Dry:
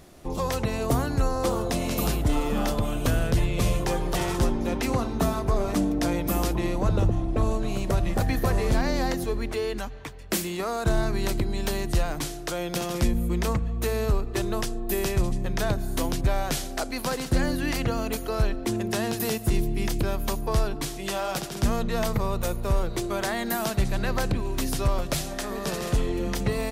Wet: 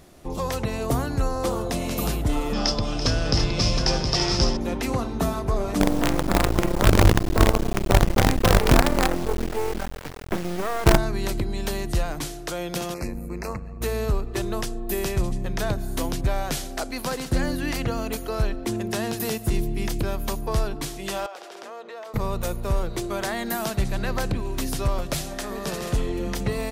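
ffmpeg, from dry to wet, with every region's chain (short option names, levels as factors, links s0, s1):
-filter_complex "[0:a]asettb=1/sr,asplit=3[s0][s1][s2];[s0]atrim=end=2.534[s3];[s1]atrim=start=2.53:end=4.57,asetpts=PTS-STARTPTS,afade=t=in:d=0.004:c=qsin,afade=t=out:st=2.036:d=0.004:c=qsin,lowpass=f=5200:t=q:w=12,aecho=1:1:335|717:0.266|0.531,atrim=end_sample=89964[s4];[s2]atrim=start=4.566[s5];[s3][s4]acrossfade=d=0.004:c1=hsin:c2=qsin[s6];[s6][s5]acrossfade=d=0.004:c1=qsin:c2=hsin,asettb=1/sr,asplit=3[s7][s8][s9];[s7]atrim=end=5.804[s10];[s8]atrim=start=5.8:end=10.98,asetpts=PTS-STARTPTS,afade=t=in:d=0.004:c=qsin,afade=t=out:st=5.176:d=0.004:c=qsin,lowpass=1500,acrusher=bits=4:dc=4:mix=0:aa=0.000001,acontrast=63[s11];[s9]atrim=start=10.976[s12];[s10][s11]acrossfade=d=0.004:c1=hsin:c2=qsin[s13];[s13][s12]acrossfade=d=0.004:c1=qsin:c2=hsin,asettb=1/sr,asplit=3[s14][s15][s16];[s14]atrim=end=12.944[s17];[s15]atrim=start=12.94:end=13.81,asetpts=PTS-STARTPTS,afade=t=in:d=0.004:c=qsin,afade=t=out:st=0.866:d=0.004:c=qsin,bass=f=250:g=-6,treble=f=4000:g=-4,tremolo=f=94:d=0.621,asuperstop=centerf=3300:order=20:qfactor=2.7[s18];[s16]atrim=start=13.806[s19];[s17][s18]acrossfade=d=0.004:c1=hsin:c2=qsin[s20];[s20][s19]acrossfade=d=0.004:c1=qsin:c2=hsin,asettb=1/sr,asplit=3[s21][s22][s23];[s21]atrim=end=21.264[s24];[s22]atrim=start=21.26:end=22.14,asetpts=PTS-STARTPTS,afade=t=in:d=0.004:c=qsin,afade=t=out:st=0.876:d=0.004:c=qsin,highpass=f=420:w=0.5412,highpass=f=420:w=1.3066,aemphasis=mode=reproduction:type=75kf,acompressor=threshold=0.0158:ratio=4:attack=3.2:release=140:knee=1:detection=peak[s25];[s23]atrim=start=22.136[s26];[s24][s25]acrossfade=d=0.004:c1=hsin:c2=qsin[s27];[s27][s26]acrossfade=d=0.004:c1=qsin:c2=hsin"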